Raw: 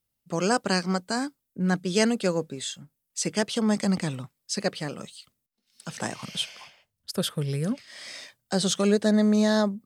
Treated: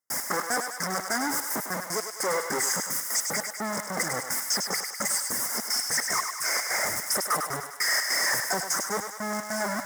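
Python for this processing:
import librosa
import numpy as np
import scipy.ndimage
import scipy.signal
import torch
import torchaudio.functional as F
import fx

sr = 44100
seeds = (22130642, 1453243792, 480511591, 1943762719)

p1 = np.sign(x) * np.sqrt(np.mean(np.square(x)))
p2 = fx.weighting(p1, sr, curve='A')
p3 = fx.dereverb_blind(p2, sr, rt60_s=0.57)
p4 = scipy.signal.sosfilt(scipy.signal.cheby1(4, 1.0, [2100.0, 5000.0], 'bandstop', fs=sr, output='sos'), p3)
p5 = fx.hum_notches(p4, sr, base_hz=50, count=3)
p6 = fx.step_gate(p5, sr, bpm=150, pattern='.x.x.x..xx.xxx', floor_db=-60.0, edge_ms=4.5)
p7 = fx.mod_noise(p6, sr, seeds[0], snr_db=18)
p8 = p7 + fx.echo_thinned(p7, sr, ms=101, feedback_pct=63, hz=650.0, wet_db=-5.5, dry=0)
y = p8 * librosa.db_to_amplitude(5.5)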